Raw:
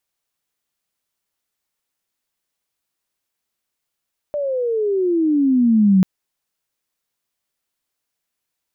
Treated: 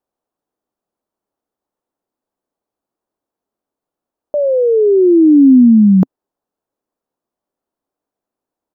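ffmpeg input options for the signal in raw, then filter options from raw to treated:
-f lavfi -i "aevalsrc='pow(10,(-9+10.5*(t/1.69-1))/20)*sin(2*PI*597*1.69/(-20.5*log(2)/12)*(exp(-20.5*log(2)/12*t/1.69)-1))':d=1.69:s=44100"
-af "firequalizer=gain_entry='entry(130,0);entry(260,10);entry(780,7);entry(2100,-13)':delay=0.05:min_phase=1"

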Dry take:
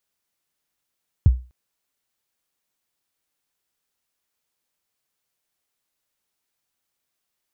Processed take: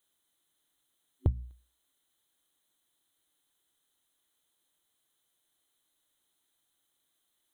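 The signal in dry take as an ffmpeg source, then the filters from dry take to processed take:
-f lavfi -i "aevalsrc='0.501*pow(10,-3*t/0.31)*sin(2*PI*(130*0.025/log(62/130)*(exp(log(62/130)*min(t,0.025)/0.025)-1)+62*max(t-0.025,0)))':d=0.25:s=44100"
-af "superequalizer=6b=1.78:12b=0.631:13b=2.24:14b=0.316:16b=1.78,acompressor=threshold=0.0447:ratio=2.5,bandreject=f=60:t=h:w=6,bandreject=f=120:t=h:w=6,bandreject=f=180:t=h:w=6,bandreject=f=240:t=h:w=6"

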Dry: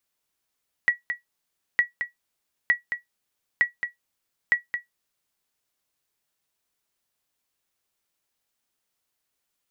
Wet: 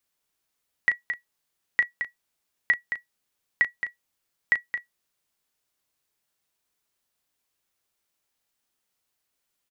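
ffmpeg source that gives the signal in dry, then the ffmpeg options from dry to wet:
-f lavfi -i "aevalsrc='0.299*(sin(2*PI*1930*mod(t,0.91))*exp(-6.91*mod(t,0.91)/0.14)+0.376*sin(2*PI*1930*max(mod(t,0.91)-0.22,0))*exp(-6.91*max(mod(t,0.91)-0.22,0)/0.14))':d=4.55:s=44100"
-filter_complex "[0:a]asplit=2[s0][s1];[s1]adelay=36,volume=0.316[s2];[s0][s2]amix=inputs=2:normalize=0"

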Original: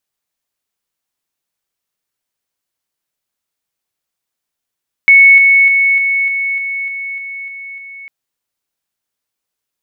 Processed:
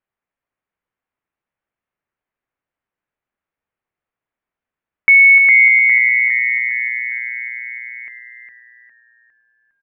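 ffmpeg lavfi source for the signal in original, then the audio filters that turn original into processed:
-f lavfi -i "aevalsrc='pow(10,(-2-3*floor(t/0.3))/20)*sin(2*PI*2210*t)':d=3:s=44100"
-filter_complex "[0:a]lowpass=f=2300:w=0.5412,lowpass=f=2300:w=1.3066,asplit=6[s0][s1][s2][s3][s4][s5];[s1]adelay=407,afreqshift=-120,volume=0.473[s6];[s2]adelay=814,afreqshift=-240,volume=0.195[s7];[s3]adelay=1221,afreqshift=-360,volume=0.0794[s8];[s4]adelay=1628,afreqshift=-480,volume=0.0327[s9];[s5]adelay=2035,afreqshift=-600,volume=0.0133[s10];[s0][s6][s7][s8][s9][s10]amix=inputs=6:normalize=0"

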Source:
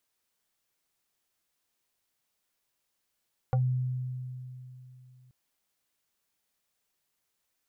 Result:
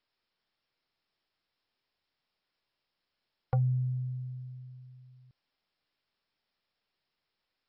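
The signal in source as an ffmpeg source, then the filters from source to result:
-f lavfi -i "aevalsrc='0.0841*pow(10,-3*t/3.11)*sin(2*PI*127*t+1*pow(10,-3*t/0.12)*sin(2*PI*5.07*127*t))':d=1.78:s=44100"
-af "adynamicequalizer=threshold=0.00501:dfrequency=160:dqfactor=7.1:tfrequency=160:tqfactor=7.1:attack=5:release=100:ratio=0.375:range=1.5:mode=boostabove:tftype=bell" -ar 44100 -c:a mp2 -b:a 48k

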